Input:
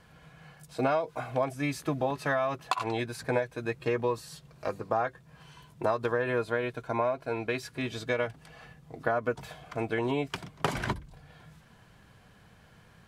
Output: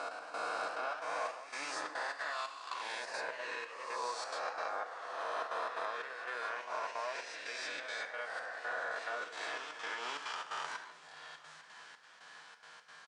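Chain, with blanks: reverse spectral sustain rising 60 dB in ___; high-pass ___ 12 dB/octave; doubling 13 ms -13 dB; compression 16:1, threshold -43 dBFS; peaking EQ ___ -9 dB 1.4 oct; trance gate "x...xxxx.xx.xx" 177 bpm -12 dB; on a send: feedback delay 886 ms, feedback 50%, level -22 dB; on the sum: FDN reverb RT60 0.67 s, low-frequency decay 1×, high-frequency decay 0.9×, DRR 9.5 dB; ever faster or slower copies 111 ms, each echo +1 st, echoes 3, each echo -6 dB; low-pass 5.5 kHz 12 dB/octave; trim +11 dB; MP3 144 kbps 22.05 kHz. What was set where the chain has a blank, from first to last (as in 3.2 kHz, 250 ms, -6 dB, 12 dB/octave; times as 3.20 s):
2.82 s, 1.4 kHz, 2.5 kHz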